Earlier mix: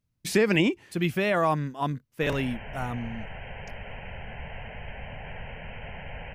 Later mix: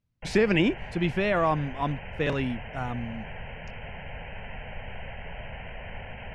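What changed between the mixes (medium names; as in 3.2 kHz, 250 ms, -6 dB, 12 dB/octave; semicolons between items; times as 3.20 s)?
speech: add distance through air 88 m; background: entry -2.00 s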